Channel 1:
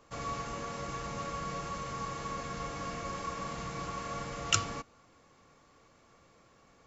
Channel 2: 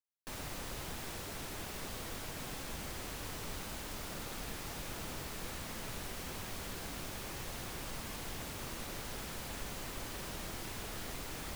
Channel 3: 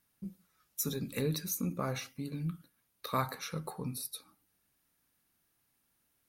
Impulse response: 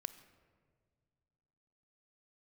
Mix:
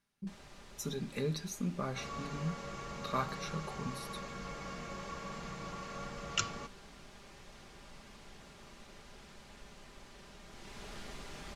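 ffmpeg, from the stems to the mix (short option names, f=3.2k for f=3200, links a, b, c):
-filter_complex "[0:a]adelay=1850,volume=-5dB[a];[1:a]volume=-4dB,afade=t=in:st=10.46:d=0.44:silence=0.421697[b];[2:a]volume=-3dB[c];[a][b][c]amix=inputs=3:normalize=0,lowpass=6.6k,aecho=1:1:5:0.42"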